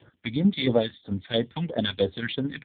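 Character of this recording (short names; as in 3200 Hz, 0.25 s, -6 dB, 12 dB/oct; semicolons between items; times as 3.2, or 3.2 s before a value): tremolo saw down 4.5 Hz, depth 60%; a quantiser's noise floor 12-bit, dither none; phasing stages 2, 3 Hz, lowest notch 440–2700 Hz; AMR-NB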